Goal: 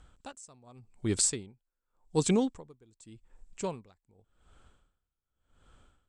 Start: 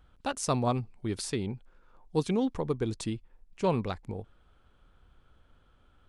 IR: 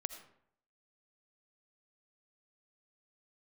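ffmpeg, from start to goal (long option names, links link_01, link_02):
-af "lowpass=frequency=7800:width_type=q:width=7.9,aeval=exprs='val(0)*pow(10,-34*(0.5-0.5*cos(2*PI*0.87*n/s))/20)':channel_layout=same,volume=3.5dB"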